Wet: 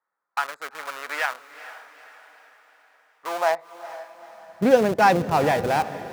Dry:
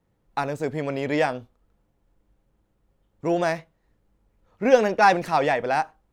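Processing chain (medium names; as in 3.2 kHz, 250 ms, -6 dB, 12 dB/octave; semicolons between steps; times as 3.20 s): local Wiener filter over 15 samples; in parallel at -4 dB: Schmitt trigger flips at -27.5 dBFS; on the sum: high-pass sweep 1.3 kHz -> 110 Hz, 3.17–4.83 s; echo that smears into a reverb 455 ms, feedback 49%, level -14 dB; trim -1.5 dB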